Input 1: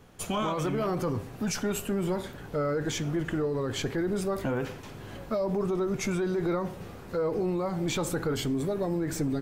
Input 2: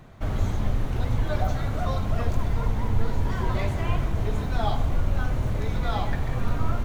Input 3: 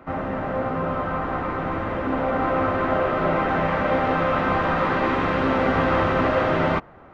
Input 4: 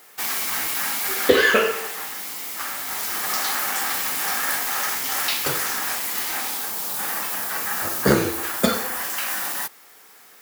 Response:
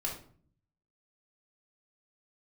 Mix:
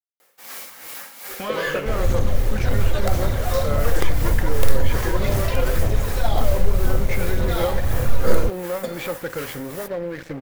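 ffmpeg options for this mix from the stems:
-filter_complex "[0:a]lowpass=3900,equalizer=frequency=1900:width=1.6:gain=12.5,adelay=1100,volume=-0.5dB[link_01];[1:a]highshelf=frequency=3800:gain=10,aeval=exprs='(mod(3.76*val(0)+1,2)-1)/3.76':channel_layout=same,aphaser=in_gain=1:out_gain=1:delay=2.5:decay=0.47:speed=1.9:type=sinusoidal,adelay=1650,volume=-0.5dB,asplit=2[link_02][link_03];[link_03]volume=-12dB[link_04];[3:a]tremolo=f=2.7:d=0.66,adelay=200,volume=-9dB[link_05];[link_01][link_02]amix=inputs=2:normalize=0,aeval=exprs='sgn(val(0))*max(abs(val(0))-0.0168,0)':channel_layout=same,alimiter=limit=-15dB:level=0:latency=1:release=31,volume=0dB[link_06];[4:a]atrim=start_sample=2205[link_07];[link_04][link_07]afir=irnorm=-1:irlink=0[link_08];[link_05][link_06][link_08]amix=inputs=3:normalize=0,equalizer=frequency=530:width=6.4:gain=13.5"

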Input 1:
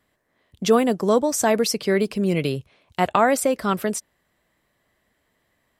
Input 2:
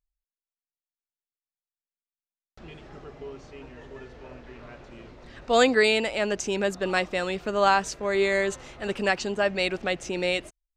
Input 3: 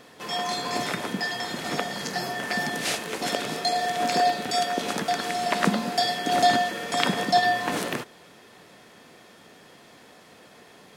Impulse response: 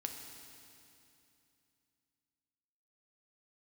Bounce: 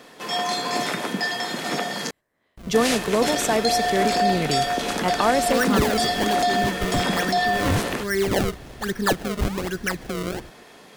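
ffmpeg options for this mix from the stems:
-filter_complex "[0:a]adelay=2050,volume=-3dB[link_01];[1:a]firequalizer=gain_entry='entry(170,0);entry(300,-5);entry(450,-7);entry(640,-23);entry(1700,5);entry(2900,-29);entry(4400,-10)':delay=0.05:min_phase=1,acrusher=samples=30:mix=1:aa=0.000001:lfo=1:lforange=48:lforate=1.2,volume=-1dB,asplit=2[link_02][link_03];[link_03]volume=-12dB[link_04];[2:a]highpass=150,volume=-3.5dB,asplit=3[link_05][link_06][link_07];[link_05]atrim=end=2.11,asetpts=PTS-STARTPTS,afade=type=out:start_time=2.106:duration=0.004:curve=hsin[link_08];[link_06]atrim=start=2.11:end=2.74,asetpts=PTS-STARTPTS,volume=0[link_09];[link_07]atrim=start=2.74,asetpts=PTS-STARTPTS,afade=type=in:duration=0.004:curve=hsin[link_10];[link_08][link_09][link_10]concat=n=3:v=0:a=1[link_11];[link_02][link_11]amix=inputs=2:normalize=0,acontrast=86,alimiter=limit=-13.5dB:level=0:latency=1:release=13,volume=0dB[link_12];[3:a]atrim=start_sample=2205[link_13];[link_04][link_13]afir=irnorm=-1:irlink=0[link_14];[link_01][link_12][link_14]amix=inputs=3:normalize=0"

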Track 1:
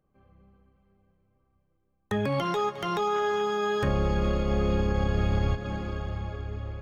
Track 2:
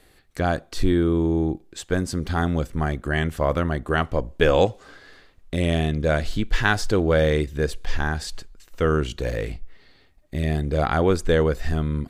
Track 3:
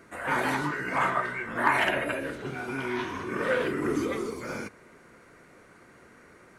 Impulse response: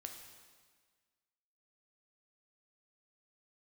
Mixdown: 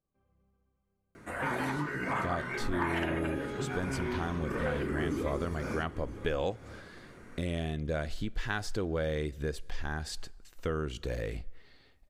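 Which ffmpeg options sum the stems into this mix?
-filter_complex "[0:a]volume=-16.5dB,asplit=2[link_01][link_02];[link_02]volume=-4.5dB[link_03];[1:a]adelay=1850,volume=-6dB,asplit=2[link_04][link_05];[link_05]volume=-20.5dB[link_06];[2:a]lowshelf=frequency=260:gain=9,adelay=1150,volume=-1.5dB,asplit=2[link_07][link_08];[link_08]volume=-18.5dB[link_09];[3:a]atrim=start_sample=2205[link_10];[link_03][link_06]amix=inputs=2:normalize=0[link_11];[link_11][link_10]afir=irnorm=-1:irlink=0[link_12];[link_09]aecho=0:1:969:1[link_13];[link_01][link_04][link_07][link_12][link_13]amix=inputs=5:normalize=0,acompressor=threshold=-32dB:ratio=2.5"

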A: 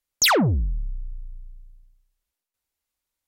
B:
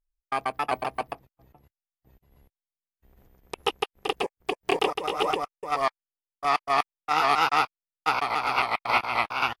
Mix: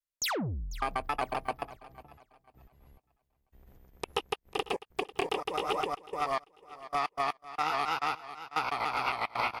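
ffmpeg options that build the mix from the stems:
ffmpeg -i stem1.wav -i stem2.wav -filter_complex "[0:a]volume=-13.5dB,asplit=2[link_01][link_02];[link_02]volume=-18dB[link_03];[1:a]lowshelf=frequency=160:gain=3.5,adelay=500,volume=-1.5dB,asplit=2[link_04][link_05];[link_05]volume=-20.5dB[link_06];[link_03][link_06]amix=inputs=2:normalize=0,aecho=0:1:495|990|1485|1980:1|0.29|0.0841|0.0244[link_07];[link_01][link_04][link_07]amix=inputs=3:normalize=0,acompressor=threshold=-27dB:ratio=6" out.wav

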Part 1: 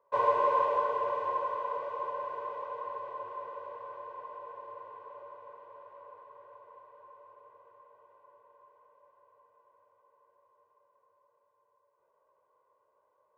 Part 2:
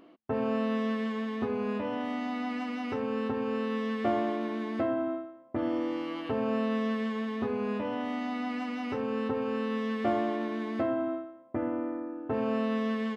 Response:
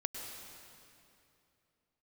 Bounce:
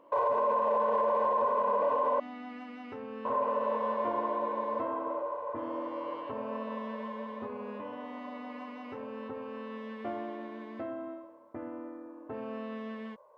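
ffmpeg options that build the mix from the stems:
-filter_complex "[0:a]equalizer=frequency=670:width=0.75:gain=12,alimiter=limit=-14.5dB:level=0:latency=1:release=201,volume=3dB,asplit=3[link_01][link_02][link_03];[link_01]atrim=end=2.2,asetpts=PTS-STARTPTS,afade=type=out:start_time=2.196:duration=0.004:curve=hsin[link_04];[link_02]atrim=start=2.2:end=3.25,asetpts=PTS-STARTPTS,volume=0[link_05];[link_03]atrim=start=3.25,asetpts=PTS-STARTPTS,afade=type=in:duration=0.004:curve=hsin[link_06];[link_04][link_05][link_06]concat=n=3:v=0:a=1[link_07];[1:a]bass=frequency=250:gain=-4,treble=frequency=4000:gain=-9,volume=-9.5dB,asplit=2[link_08][link_09];[link_09]volume=-18dB[link_10];[2:a]atrim=start_sample=2205[link_11];[link_10][link_11]afir=irnorm=-1:irlink=0[link_12];[link_07][link_08][link_12]amix=inputs=3:normalize=0,alimiter=limit=-20.5dB:level=0:latency=1:release=40"

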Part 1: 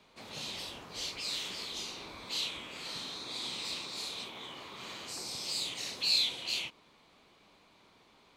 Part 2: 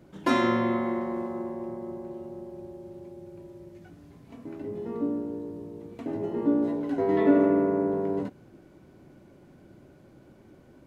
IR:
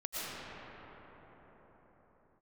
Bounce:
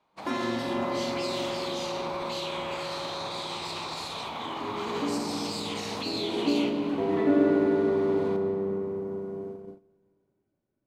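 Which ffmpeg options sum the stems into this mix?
-filter_complex "[0:a]equalizer=frequency=880:width=0.8:gain=15,acompressor=threshold=-39dB:ratio=6,alimiter=level_in=12dB:limit=-24dB:level=0:latency=1:release=72,volume=-12dB,volume=2.5dB,asplit=2[link_01][link_02];[link_02]volume=-10dB[link_03];[1:a]volume=-10.5dB,asplit=2[link_04][link_05];[link_05]volume=-4.5dB[link_06];[2:a]atrim=start_sample=2205[link_07];[link_03][link_06]amix=inputs=2:normalize=0[link_08];[link_08][link_07]afir=irnorm=-1:irlink=0[link_09];[link_01][link_04][link_09]amix=inputs=3:normalize=0,agate=range=-22dB:threshold=-42dB:ratio=16:detection=peak,dynaudnorm=framelen=140:gausssize=11:maxgain=5dB"

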